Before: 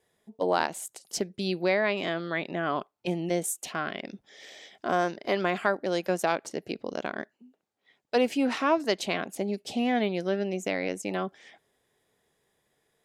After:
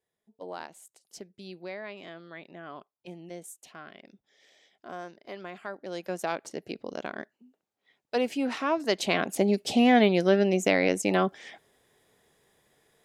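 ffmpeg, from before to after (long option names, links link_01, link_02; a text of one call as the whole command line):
ffmpeg -i in.wav -af "volume=6.5dB,afade=type=in:start_time=5.62:duration=0.87:silence=0.281838,afade=type=in:start_time=8.75:duration=0.66:silence=0.334965" out.wav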